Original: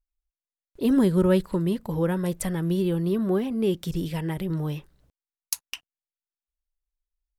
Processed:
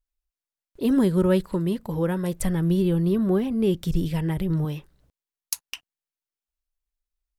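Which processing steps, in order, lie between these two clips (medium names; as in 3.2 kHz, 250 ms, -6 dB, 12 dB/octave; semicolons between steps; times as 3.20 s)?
2.40–4.65 s: bass shelf 120 Hz +12 dB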